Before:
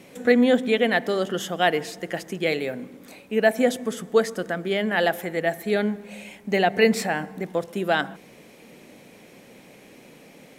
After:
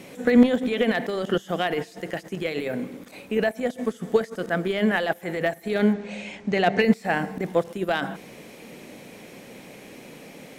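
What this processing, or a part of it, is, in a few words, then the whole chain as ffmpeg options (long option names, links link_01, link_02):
de-esser from a sidechain: -filter_complex "[0:a]asettb=1/sr,asplit=3[link_01][link_02][link_03];[link_01]atrim=end=5.934[link_04];[link_02]atrim=start=5.93:end=6.82,asetpts=PTS-STARTPTS,afade=type=in:duration=0.004:curve=qsin,afade=type=out:start_time=0.886:duration=0.004:curve=qsin,lowpass=frequency=6800:width=0.5412,lowpass=frequency=6800:width=1.3066[link_05];[link_03]atrim=start=6.816[link_06];[link_04][link_05]acrossfade=duration=0.004:curve1=hsin:curve2=qsin[link_07];[link_07][link_06]acrossfade=duration=0.004:curve1=qsin:curve2=hsin,asplit=2[link_08][link_09];[link_09]highpass=frequency=6300:width=0.5412,highpass=frequency=6300:width=1.3066,apad=whole_len=466987[link_10];[link_08][link_10]sidechaincompress=threshold=-56dB:ratio=10:attack=0.61:release=25,volume=5.5dB"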